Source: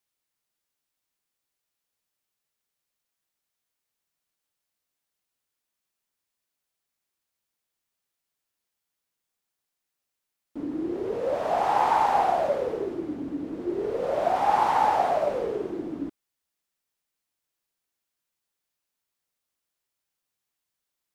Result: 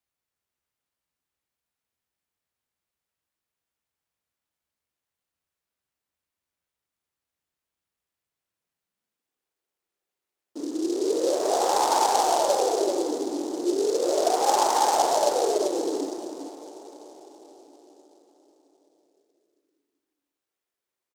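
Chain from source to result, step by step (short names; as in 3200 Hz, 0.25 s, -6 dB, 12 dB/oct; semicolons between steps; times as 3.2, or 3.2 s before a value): treble ducked by the level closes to 2700 Hz; outdoor echo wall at 67 m, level -6 dB; high-pass sweep 66 Hz -> 370 Hz, 8.22–9.48; on a send at -11 dB: reverb RT60 5.4 s, pre-delay 18 ms; on the sum: noise-modulated delay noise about 5500 Hz, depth 0.06 ms; gain -2.5 dB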